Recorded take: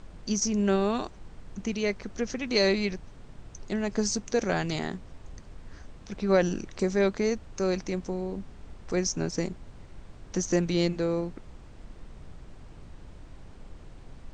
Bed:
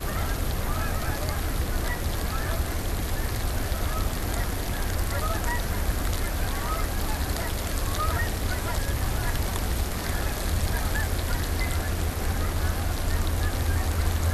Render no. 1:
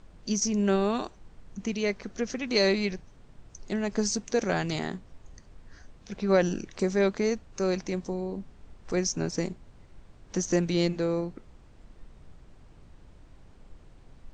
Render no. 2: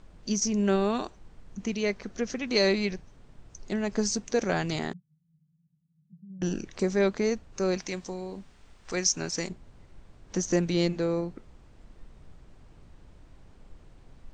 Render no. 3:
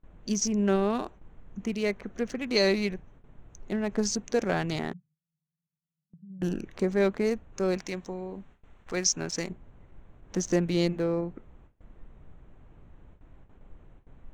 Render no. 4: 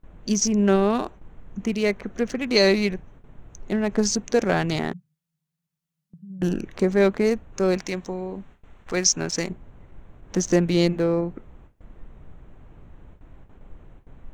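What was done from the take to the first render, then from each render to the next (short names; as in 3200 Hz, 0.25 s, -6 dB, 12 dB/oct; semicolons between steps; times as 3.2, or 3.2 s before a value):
noise print and reduce 6 dB
4.93–6.42 Butterworth band-pass 160 Hz, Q 6.5; 7.77–9.49 tilt shelf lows -6 dB, about 930 Hz
Wiener smoothing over 9 samples; gate with hold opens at -43 dBFS
gain +6 dB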